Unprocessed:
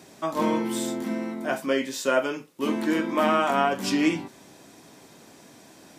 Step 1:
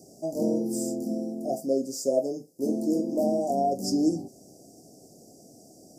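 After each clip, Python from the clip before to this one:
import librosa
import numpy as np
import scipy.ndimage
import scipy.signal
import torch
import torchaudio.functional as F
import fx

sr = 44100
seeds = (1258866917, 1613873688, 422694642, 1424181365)

y = scipy.signal.sosfilt(scipy.signal.cheby1(5, 1.0, [730.0, 4900.0], 'bandstop', fs=sr, output='sos'), x)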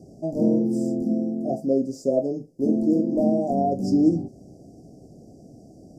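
y = fx.riaa(x, sr, side='playback')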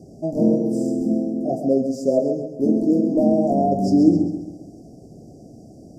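y = fx.echo_feedback(x, sr, ms=134, feedback_pct=42, wet_db=-8.0)
y = F.gain(torch.from_numpy(y), 3.0).numpy()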